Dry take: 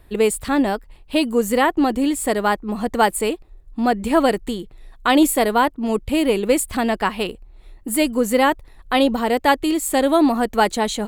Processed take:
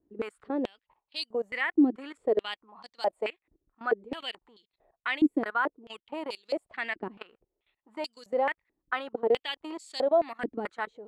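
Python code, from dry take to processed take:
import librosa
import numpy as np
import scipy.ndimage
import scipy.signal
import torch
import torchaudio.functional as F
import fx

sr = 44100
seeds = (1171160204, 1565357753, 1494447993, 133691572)

y = fx.env_lowpass(x, sr, base_hz=1600.0, full_db=-14.0)
y = fx.level_steps(y, sr, step_db=20)
y = fx.filter_held_bandpass(y, sr, hz=4.6, low_hz=300.0, high_hz=4500.0)
y = y * librosa.db_to_amplitude(3.0)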